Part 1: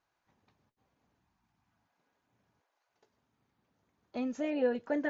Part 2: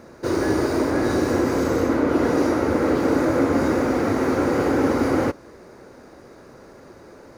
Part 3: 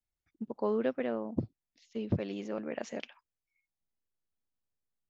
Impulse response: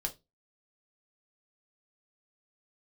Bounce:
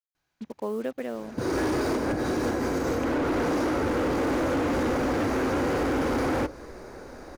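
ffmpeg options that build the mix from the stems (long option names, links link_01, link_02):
-filter_complex "[0:a]equalizer=frequency=880:width_type=o:width=1.6:gain=-9,adelay=150,volume=2.5dB,asplit=2[link_01][link_02];[link_02]volume=-5.5dB[link_03];[1:a]asubboost=boost=3.5:cutoff=66,adelay=1150,volume=1dB,asplit=2[link_04][link_05];[link_05]volume=-12dB[link_06];[2:a]acrusher=bits=7:mix=0:aa=0.5,volume=0.5dB,asplit=2[link_07][link_08];[link_08]apad=whole_len=375841[link_09];[link_04][link_09]sidechaincompress=threshold=-38dB:ratio=8:attack=16:release=169[link_10];[3:a]atrim=start_sample=2205[link_11];[link_03][link_06]amix=inputs=2:normalize=0[link_12];[link_12][link_11]afir=irnorm=-1:irlink=0[link_13];[link_01][link_10][link_07][link_13]amix=inputs=4:normalize=0,asoftclip=type=hard:threshold=-18.5dB,acompressor=threshold=-24dB:ratio=6"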